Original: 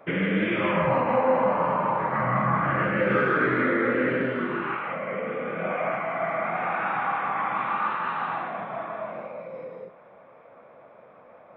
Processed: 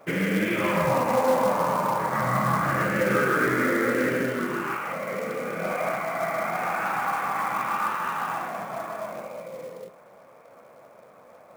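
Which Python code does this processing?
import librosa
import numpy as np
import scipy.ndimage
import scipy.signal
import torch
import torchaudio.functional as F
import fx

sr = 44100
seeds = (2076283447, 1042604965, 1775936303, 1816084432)

y = fx.quant_float(x, sr, bits=2)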